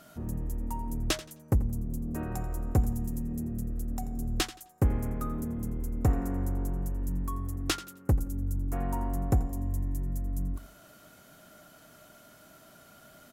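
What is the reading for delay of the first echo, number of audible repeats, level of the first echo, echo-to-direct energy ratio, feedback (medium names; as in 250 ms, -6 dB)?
86 ms, 2, -16.0 dB, -15.5 dB, 26%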